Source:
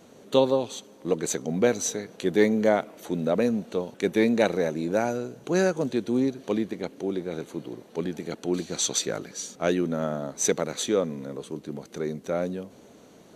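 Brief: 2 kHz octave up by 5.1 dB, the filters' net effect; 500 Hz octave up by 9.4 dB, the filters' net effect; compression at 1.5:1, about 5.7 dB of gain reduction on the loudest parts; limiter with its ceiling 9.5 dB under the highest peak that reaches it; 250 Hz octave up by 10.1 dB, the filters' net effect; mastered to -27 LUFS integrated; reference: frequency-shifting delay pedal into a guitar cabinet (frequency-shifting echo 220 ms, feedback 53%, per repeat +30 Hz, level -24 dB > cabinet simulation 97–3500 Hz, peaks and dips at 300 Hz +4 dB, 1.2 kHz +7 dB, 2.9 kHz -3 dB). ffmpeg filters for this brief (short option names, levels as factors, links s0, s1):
-filter_complex "[0:a]equalizer=f=250:t=o:g=8,equalizer=f=500:t=o:g=8,equalizer=f=2000:t=o:g=5,acompressor=threshold=0.0708:ratio=1.5,alimiter=limit=0.188:level=0:latency=1,asplit=4[s0][s1][s2][s3];[s1]adelay=220,afreqshift=30,volume=0.0631[s4];[s2]adelay=440,afreqshift=60,volume=0.0335[s5];[s3]adelay=660,afreqshift=90,volume=0.0178[s6];[s0][s4][s5][s6]amix=inputs=4:normalize=0,highpass=97,equalizer=f=300:t=q:w=4:g=4,equalizer=f=1200:t=q:w=4:g=7,equalizer=f=2900:t=q:w=4:g=-3,lowpass=f=3500:w=0.5412,lowpass=f=3500:w=1.3066,volume=0.794"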